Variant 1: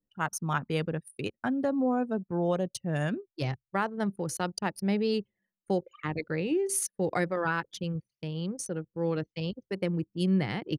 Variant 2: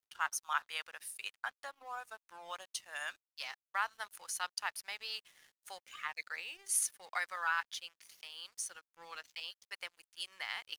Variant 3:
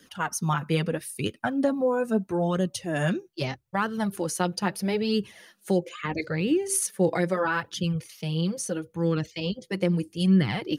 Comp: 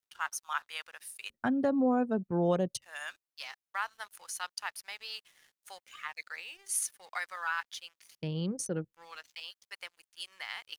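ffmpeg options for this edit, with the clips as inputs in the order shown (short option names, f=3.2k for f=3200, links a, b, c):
-filter_complex "[0:a]asplit=2[a][b];[1:a]asplit=3[c][d][e];[c]atrim=end=1.302[f];[a]atrim=start=1.298:end=2.822[g];[d]atrim=start=2.818:end=8.152[h];[b]atrim=start=8.148:end=8.932[i];[e]atrim=start=8.928[j];[f][g]acrossfade=d=0.004:c1=hsin:c2=hsin[k];[k][h]acrossfade=d=0.004:c1=hsin:c2=hsin[l];[l][i]acrossfade=d=0.004:c1=hsin:c2=hsin[m];[m][j]acrossfade=d=0.004:c1=hsin:c2=hsin"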